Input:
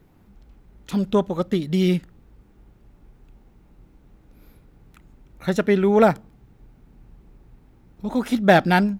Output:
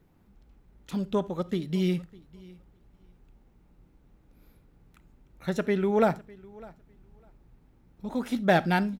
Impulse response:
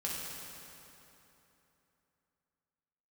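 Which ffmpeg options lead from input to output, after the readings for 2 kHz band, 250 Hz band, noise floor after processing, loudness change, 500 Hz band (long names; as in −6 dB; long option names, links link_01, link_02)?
−7.5 dB, −7.5 dB, −62 dBFS, −7.0 dB, −7.5 dB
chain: -filter_complex "[0:a]aecho=1:1:603|1206:0.0708|0.0113,asplit=2[link_01][link_02];[1:a]atrim=start_sample=2205,atrim=end_sample=3969[link_03];[link_02][link_03]afir=irnorm=-1:irlink=0,volume=-14.5dB[link_04];[link_01][link_04]amix=inputs=2:normalize=0,volume=-8.5dB"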